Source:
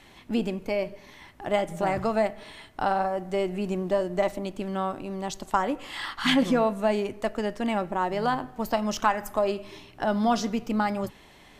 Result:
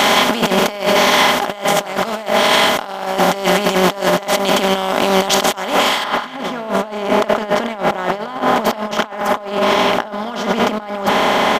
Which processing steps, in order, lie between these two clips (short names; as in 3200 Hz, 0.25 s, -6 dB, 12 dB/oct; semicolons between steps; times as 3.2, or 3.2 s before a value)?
per-bin compression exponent 0.4; HPF 110 Hz 6 dB/oct; low shelf 460 Hz -8.5 dB; comb 4.9 ms, depth 42%; negative-ratio compressor -28 dBFS, ratio -0.5; high shelf 3000 Hz +2 dB, from 6.04 s -10 dB; maximiser +13.5 dB; gain -1 dB